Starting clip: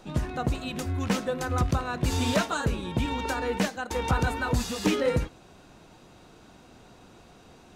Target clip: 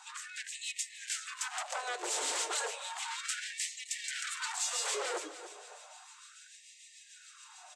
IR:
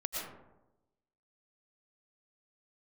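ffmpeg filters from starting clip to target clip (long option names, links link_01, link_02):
-filter_complex "[0:a]aecho=1:1:6.7:0.55,asplit=2[link_01][link_02];[link_02]acompressor=threshold=-34dB:ratio=6,volume=1dB[link_03];[link_01][link_03]amix=inputs=2:normalize=0,aeval=exprs='0.0631*(abs(mod(val(0)/0.0631+3,4)-2)-1)':channel_layout=same,acrossover=split=2100[link_04][link_05];[link_04]aeval=exprs='val(0)*(1-0.5/2+0.5/2*cos(2*PI*6.8*n/s))':channel_layout=same[link_06];[link_05]aeval=exprs='val(0)*(1-0.5/2-0.5/2*cos(2*PI*6.8*n/s))':channel_layout=same[link_07];[link_06][link_07]amix=inputs=2:normalize=0,asoftclip=type=tanh:threshold=-25.5dB,lowpass=frequency=7900:width_type=q:width=4.5,aecho=1:1:290|580|870|1160:0.2|0.0798|0.0319|0.0128,afftfilt=real='re*gte(b*sr/1024,300*pow(1800/300,0.5+0.5*sin(2*PI*0.33*pts/sr)))':imag='im*gte(b*sr/1024,300*pow(1800/300,0.5+0.5*sin(2*PI*0.33*pts/sr)))':win_size=1024:overlap=0.75,volume=-3.5dB"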